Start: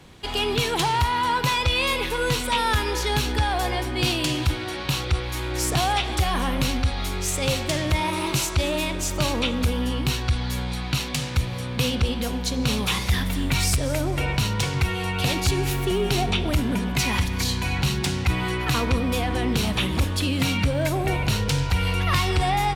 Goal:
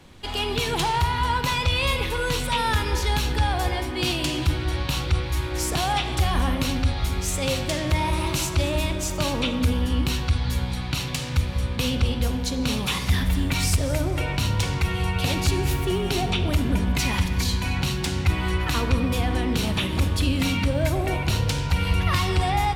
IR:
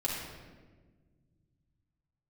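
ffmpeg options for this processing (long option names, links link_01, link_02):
-filter_complex "[0:a]asplit=2[link_01][link_02];[1:a]atrim=start_sample=2205,lowshelf=frequency=110:gain=10.5[link_03];[link_02][link_03]afir=irnorm=-1:irlink=0,volume=-13dB[link_04];[link_01][link_04]amix=inputs=2:normalize=0,volume=-3.5dB"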